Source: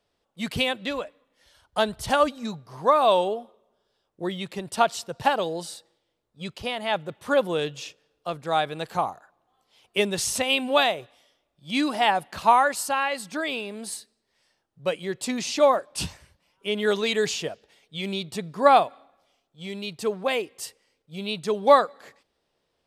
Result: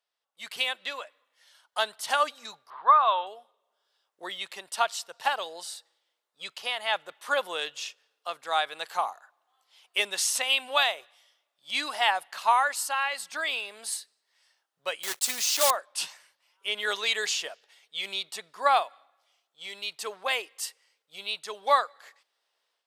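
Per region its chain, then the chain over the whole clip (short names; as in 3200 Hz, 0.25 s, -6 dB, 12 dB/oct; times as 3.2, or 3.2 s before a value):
2.7–3.27 elliptic low-pass 3800 Hz, stop band 50 dB + bell 1200 Hz +11.5 dB 1.1 oct
15.03–15.71 block floating point 3-bit + tone controls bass +3 dB, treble +7 dB
whole clip: HPF 970 Hz 12 dB/oct; notch 2400 Hz, Q 29; AGC gain up to 10 dB; gain -8 dB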